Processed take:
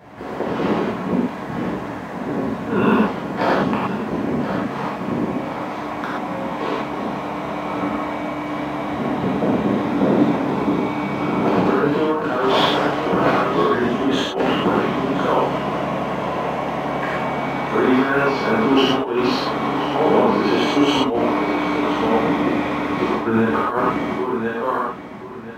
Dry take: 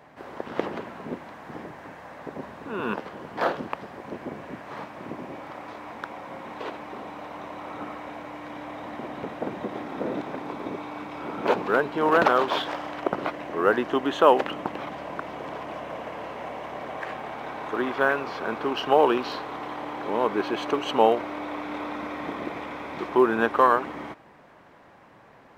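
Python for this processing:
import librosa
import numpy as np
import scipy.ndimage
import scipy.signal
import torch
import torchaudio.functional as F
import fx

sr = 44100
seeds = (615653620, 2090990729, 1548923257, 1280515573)

p1 = fx.peak_eq(x, sr, hz=150.0, db=8.5, octaves=1.9)
p2 = p1 + fx.echo_feedback(p1, sr, ms=1025, feedback_pct=24, wet_db=-13, dry=0)
p3 = fx.over_compress(p2, sr, threshold_db=-23.0, ratio=-0.5)
y = fx.rev_gated(p3, sr, seeds[0], gate_ms=150, shape='flat', drr_db=-7.5)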